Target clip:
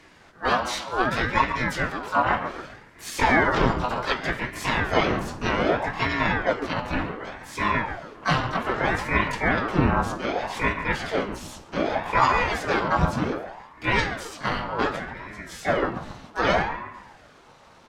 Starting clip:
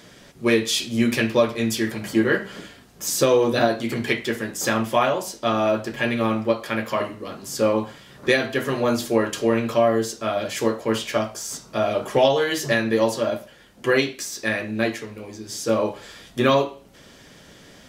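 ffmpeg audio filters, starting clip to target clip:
ffmpeg -i in.wav -filter_complex "[0:a]afftfilt=real='real(if(lt(b,1008),b+24*(1-2*mod(floor(b/24),2)),b),0)':imag='imag(if(lt(b,1008),b+24*(1-2*mod(floor(b/24),2)),b),0)':win_size=2048:overlap=0.75,asplit=4[link_01][link_02][link_03][link_04];[link_02]asetrate=22050,aresample=44100,atempo=2,volume=-8dB[link_05];[link_03]asetrate=52444,aresample=44100,atempo=0.840896,volume=-14dB[link_06];[link_04]asetrate=66075,aresample=44100,atempo=0.66742,volume=-2dB[link_07];[link_01][link_05][link_06][link_07]amix=inputs=4:normalize=0,dynaudnorm=framelen=130:gausssize=31:maxgain=7.5dB,aemphasis=mode=reproduction:type=50fm,asplit=2[link_08][link_09];[link_09]adelay=138,lowpass=frequency=1400:poles=1,volume=-8dB,asplit=2[link_10][link_11];[link_11]adelay=138,lowpass=frequency=1400:poles=1,volume=0.46,asplit=2[link_12][link_13];[link_13]adelay=138,lowpass=frequency=1400:poles=1,volume=0.46,asplit=2[link_14][link_15];[link_15]adelay=138,lowpass=frequency=1400:poles=1,volume=0.46,asplit=2[link_16][link_17];[link_17]adelay=138,lowpass=frequency=1400:poles=1,volume=0.46[link_18];[link_10][link_12][link_14][link_16][link_18]amix=inputs=5:normalize=0[link_19];[link_08][link_19]amix=inputs=2:normalize=0,aeval=exprs='val(0)*sin(2*PI*580*n/s+580*0.8/0.65*sin(2*PI*0.65*n/s))':channel_layout=same,volume=-3.5dB" out.wav

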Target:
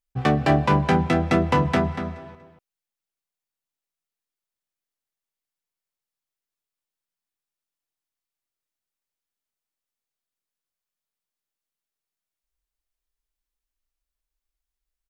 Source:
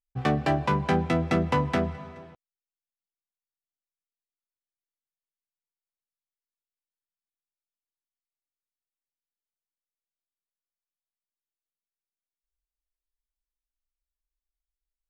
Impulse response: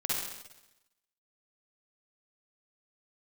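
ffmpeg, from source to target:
-filter_complex "[0:a]asplit=2[link_01][link_02];[link_02]adelay=239.1,volume=-9dB,highshelf=frequency=4000:gain=-5.38[link_03];[link_01][link_03]amix=inputs=2:normalize=0,volume=4.5dB"

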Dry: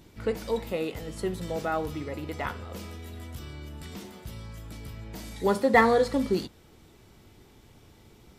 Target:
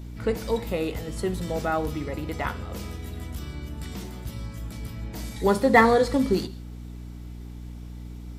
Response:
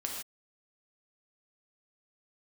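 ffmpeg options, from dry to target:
-filter_complex "[0:a]asplit=2[link_01][link_02];[link_02]asuperstop=centerf=1200:order=8:qfactor=0.54[link_03];[1:a]atrim=start_sample=2205[link_04];[link_03][link_04]afir=irnorm=-1:irlink=0,volume=-15dB[link_05];[link_01][link_05]amix=inputs=2:normalize=0,aeval=exprs='val(0)+0.01*(sin(2*PI*60*n/s)+sin(2*PI*2*60*n/s)/2+sin(2*PI*3*60*n/s)/3+sin(2*PI*4*60*n/s)/4+sin(2*PI*5*60*n/s)/5)':channel_layout=same,volume=3dB"

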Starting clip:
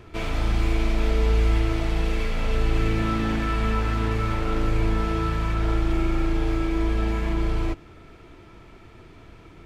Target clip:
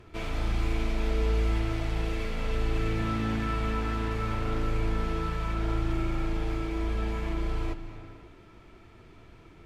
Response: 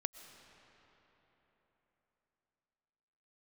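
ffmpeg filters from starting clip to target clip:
-filter_complex "[1:a]atrim=start_sample=2205,afade=type=out:start_time=0.43:duration=0.01,atrim=end_sample=19404,asetrate=29547,aresample=44100[link_01];[0:a][link_01]afir=irnorm=-1:irlink=0,volume=-6.5dB"

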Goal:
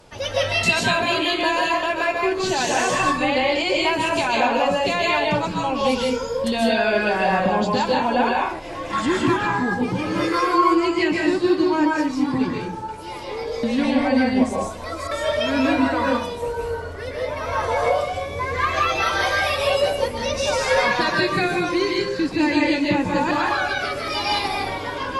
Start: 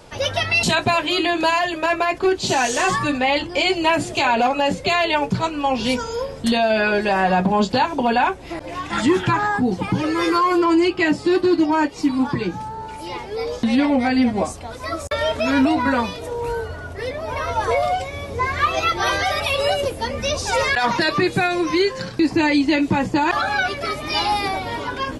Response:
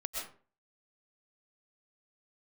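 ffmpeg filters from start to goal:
-filter_complex "[1:a]atrim=start_sample=2205,asetrate=37044,aresample=44100[link_01];[0:a][link_01]afir=irnorm=-1:irlink=0,volume=-3.5dB"

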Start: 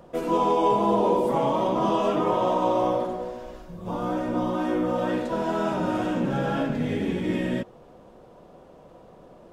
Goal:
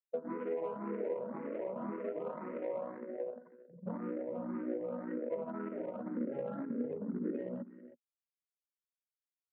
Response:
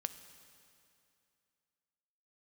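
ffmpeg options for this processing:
-filter_complex "[0:a]afftfilt=real='re*gte(hypot(re,im),0.0708)':imag='im*gte(hypot(re,im),0.0708)':win_size=1024:overlap=0.75,equalizer=frequency=550:width=1.4:gain=9,acrossover=split=2000[link_01][link_02];[link_01]acompressor=threshold=-31dB:ratio=12[link_03];[link_03][link_02]amix=inputs=2:normalize=0,aeval=exprs='0.075*(cos(1*acos(clip(val(0)/0.075,-1,1)))-cos(1*PI/2))+0.00237*(cos(6*acos(clip(val(0)/0.075,-1,1)))-cos(6*PI/2))+0.00596*(cos(7*acos(clip(val(0)/0.075,-1,1)))-cos(7*PI/2))+0.000668*(cos(8*acos(clip(val(0)/0.075,-1,1)))-cos(8*PI/2))':channel_layout=same,adynamicsmooth=sensitivity=0.5:basefreq=610,highpass=frequency=160:width=0.5412,highpass=frequency=160:width=1.3066,equalizer=frequency=230:width_type=q:width=4:gain=10,equalizer=frequency=450:width_type=q:width=4:gain=6,equalizer=frequency=750:width_type=q:width=4:gain=-6,equalizer=frequency=1400:width_type=q:width=4:gain=8,equalizer=frequency=2000:width_type=q:width=4:gain=7,lowpass=frequency=4000:width=0.5412,lowpass=frequency=4000:width=1.3066,aecho=1:1:320:0.15,asplit=2[link_04][link_05];[link_05]afreqshift=1.9[link_06];[link_04][link_06]amix=inputs=2:normalize=1,volume=-2.5dB"

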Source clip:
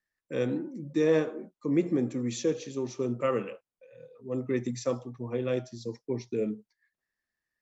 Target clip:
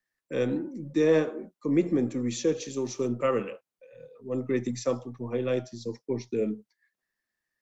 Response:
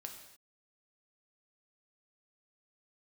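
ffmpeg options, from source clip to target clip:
-filter_complex "[0:a]asettb=1/sr,asplit=3[link_01][link_02][link_03];[link_01]atrim=end=2.604[link_04];[link_02]atrim=start=2.6:end=3.08,asetpts=PTS-STARTPTS,afade=type=in:duration=0.004:curve=qsin,afade=type=out:start_time=0.476:duration=0.004:curve=qsin,highshelf=frequency=6400:gain=11[link_05];[link_03]atrim=start=3.076[link_06];[link_04][link_05]acrossfade=duration=0.004:curve1=hsin:curve2=qsin[link_07];[link_07][link_06]acrossfade=duration=0.004:curve1=qsin:curve2=hsin,acrossover=split=110|920|2200[link_08][link_09][link_10][link_11];[link_08]aeval=exprs='max(val(0),0)':channel_layout=same[link_12];[link_12][link_09][link_10][link_11]amix=inputs=4:normalize=0,volume=2dB"

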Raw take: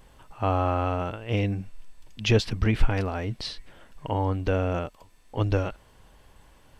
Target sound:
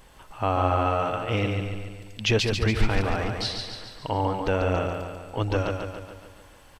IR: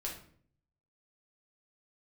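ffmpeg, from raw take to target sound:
-filter_complex "[0:a]lowshelf=frequency=460:gain=-5.5,asplit=2[link_01][link_02];[link_02]alimiter=limit=-23.5dB:level=0:latency=1:release=204,volume=-2dB[link_03];[link_01][link_03]amix=inputs=2:normalize=0,aecho=1:1:142|284|426|568|710|852|994:0.562|0.315|0.176|0.0988|0.0553|0.031|0.0173"

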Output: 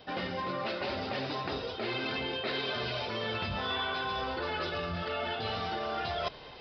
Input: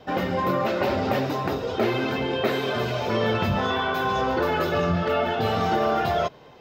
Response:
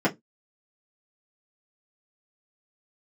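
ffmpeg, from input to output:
-af "aresample=11025,aresample=44100,areverse,acompressor=threshold=-33dB:ratio=5,areverse,asubboost=boost=3.5:cutoff=71,crystalizer=i=5.5:c=0,volume=-1.5dB"

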